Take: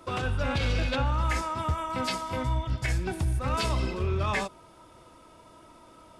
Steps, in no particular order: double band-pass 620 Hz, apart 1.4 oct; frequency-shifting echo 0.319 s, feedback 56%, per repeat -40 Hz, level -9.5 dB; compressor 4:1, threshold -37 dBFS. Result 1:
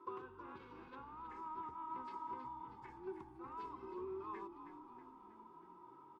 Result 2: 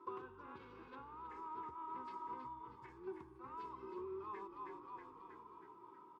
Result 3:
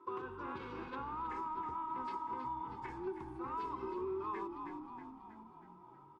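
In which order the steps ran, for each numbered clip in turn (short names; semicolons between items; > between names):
compressor > double band-pass > frequency-shifting echo; frequency-shifting echo > compressor > double band-pass; double band-pass > frequency-shifting echo > compressor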